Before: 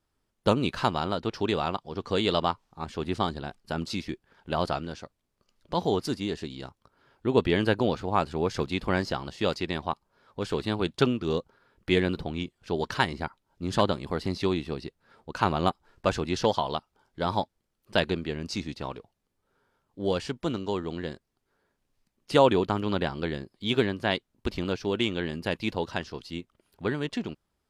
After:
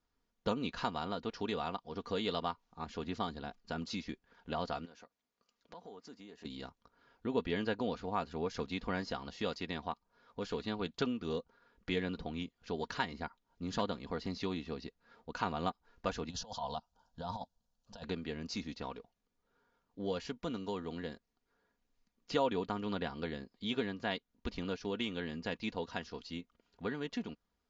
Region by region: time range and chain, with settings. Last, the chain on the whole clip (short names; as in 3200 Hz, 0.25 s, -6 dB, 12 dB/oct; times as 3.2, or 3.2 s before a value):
4.85–6.45 HPF 350 Hz 6 dB/oct + dynamic EQ 4200 Hz, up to -8 dB, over -53 dBFS, Q 0.88 + compressor 3:1, threshold -48 dBFS
16.29–18.04 bell 1200 Hz -8 dB 0.46 oct + negative-ratio compressor -30 dBFS, ratio -0.5 + fixed phaser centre 880 Hz, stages 4
whole clip: Chebyshev low-pass 7200 Hz, order 8; comb 4.2 ms, depth 50%; compressor 1.5:1, threshold -36 dBFS; gain -5 dB